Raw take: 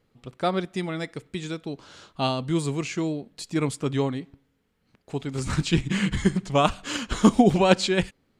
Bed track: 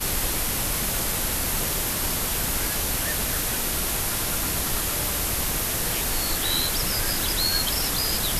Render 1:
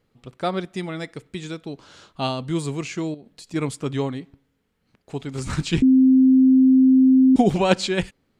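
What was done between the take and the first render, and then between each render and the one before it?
3.14–3.54 s: compression 4:1, threshold -39 dBFS; 5.82–7.36 s: bleep 261 Hz -10.5 dBFS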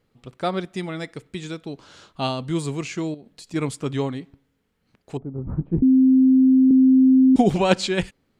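5.17–6.71 s: Bessel low-pass 550 Hz, order 4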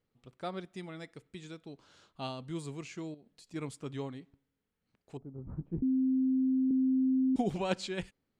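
trim -14 dB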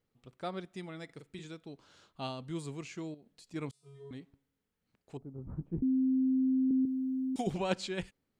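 1.05–1.45 s: doubling 43 ms -6 dB; 3.71–4.11 s: feedback comb 140 Hz, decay 1 s, harmonics odd, mix 100%; 6.85–7.47 s: tilt EQ +3 dB/octave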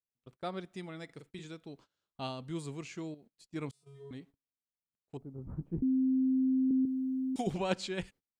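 gate -56 dBFS, range -26 dB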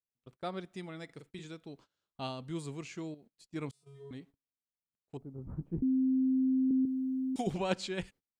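no audible change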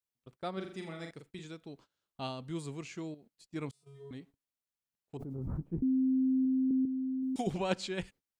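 0.53–1.11 s: flutter echo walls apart 7.2 m, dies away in 0.53 s; 5.15–5.71 s: swell ahead of each attack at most 21 dB/s; 6.45–7.23 s: Chebyshev low-pass 1.3 kHz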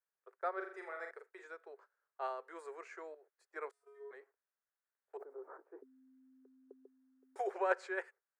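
Chebyshev high-pass 390 Hz, order 6; resonant high shelf 2.3 kHz -12 dB, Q 3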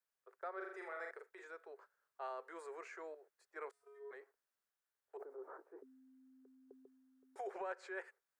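compression 10:1, threshold -39 dBFS, peak gain reduction 13.5 dB; transient shaper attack -4 dB, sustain +2 dB

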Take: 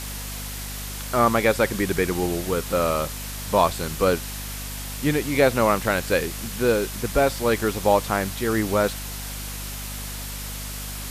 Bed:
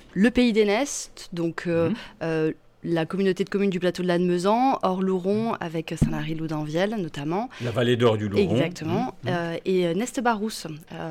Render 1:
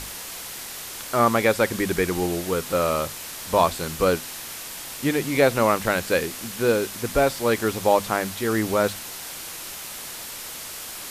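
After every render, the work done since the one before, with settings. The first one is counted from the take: hum notches 50/100/150/200/250 Hz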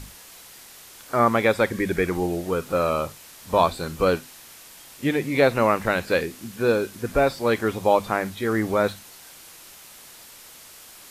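noise print and reduce 10 dB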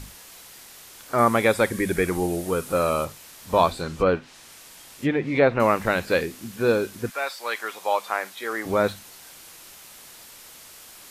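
1.18–3.05 s: peaking EQ 10 kHz +9 dB 0.81 oct; 3.72–5.60 s: low-pass that closes with the level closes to 2.5 kHz, closed at -19 dBFS; 7.09–8.65 s: high-pass 1.2 kHz -> 550 Hz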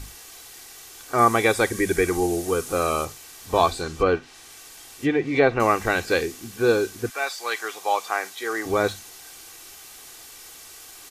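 comb 2.6 ms, depth 49%; dynamic bell 6.4 kHz, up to +7 dB, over -50 dBFS, Q 1.6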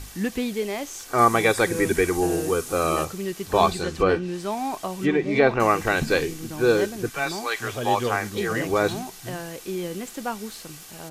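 add bed -7.5 dB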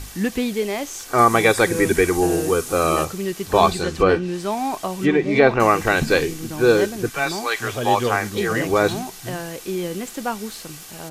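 trim +4 dB; peak limiter -2 dBFS, peak gain reduction 1.5 dB

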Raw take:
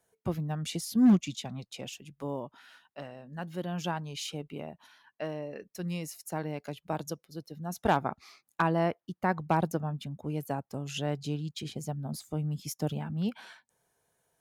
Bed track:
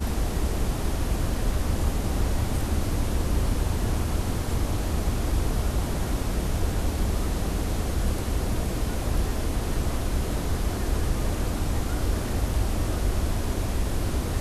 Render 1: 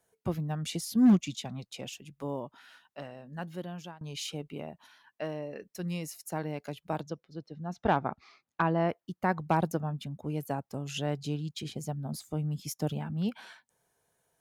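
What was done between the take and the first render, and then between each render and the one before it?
3.41–4.01 s: fade out, to -23.5 dB; 7.01–8.89 s: distance through air 170 m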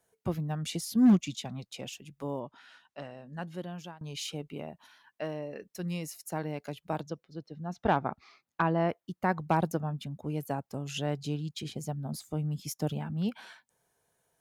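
2.39–3.71 s: low-pass 6.6 kHz -> 12 kHz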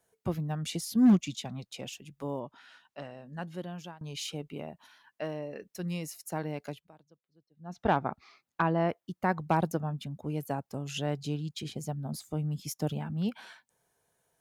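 6.69–7.79 s: dip -24 dB, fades 0.22 s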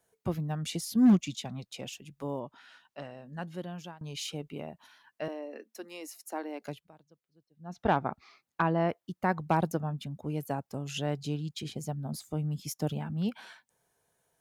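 5.28–6.62 s: rippled Chebyshev high-pass 220 Hz, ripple 3 dB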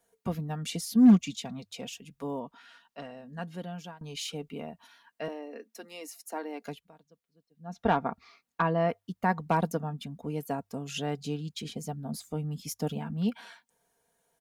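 hum notches 50/100 Hz; comb 4.3 ms, depth 52%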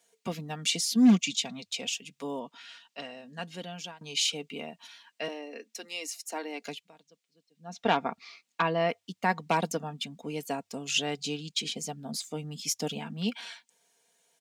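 high-pass 200 Hz 12 dB/octave; high-order bell 4.2 kHz +10 dB 2.3 oct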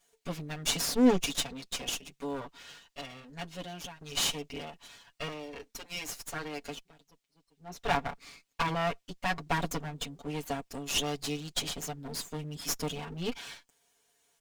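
comb filter that takes the minimum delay 7 ms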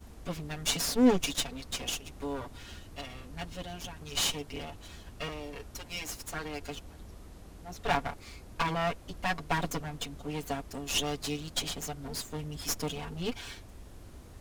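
add bed track -23 dB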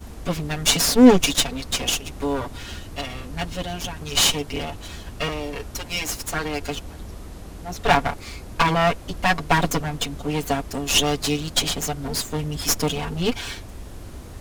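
trim +11.5 dB; peak limiter -1 dBFS, peak gain reduction 1.5 dB

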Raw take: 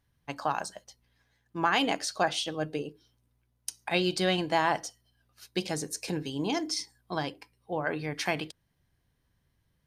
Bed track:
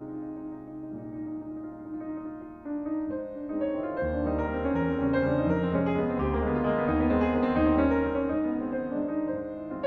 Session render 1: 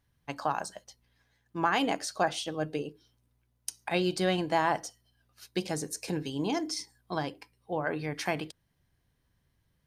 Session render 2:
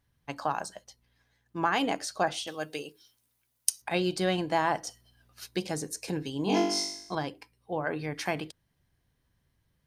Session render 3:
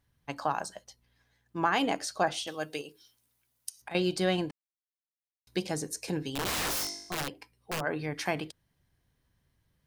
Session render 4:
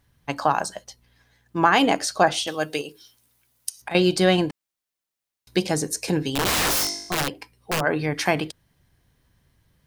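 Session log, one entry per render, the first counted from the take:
dynamic bell 3.5 kHz, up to -5 dB, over -41 dBFS, Q 0.74
2.47–3.82 s: tilt EQ +3.5 dB/octave; 4.87–5.56 s: gain +6.5 dB; 6.45–7.15 s: flutter echo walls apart 3.5 m, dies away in 0.73 s
2.81–3.95 s: compression 2.5:1, threshold -41 dBFS; 4.51–5.47 s: mute; 6.32–7.81 s: integer overflow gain 26.5 dB
trim +9.5 dB

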